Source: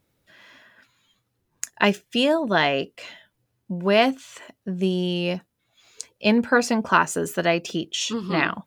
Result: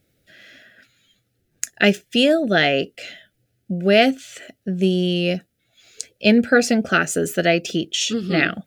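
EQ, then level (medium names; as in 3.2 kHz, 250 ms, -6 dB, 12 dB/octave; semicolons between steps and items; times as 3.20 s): Butterworth band-stop 1 kHz, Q 1.5; +4.5 dB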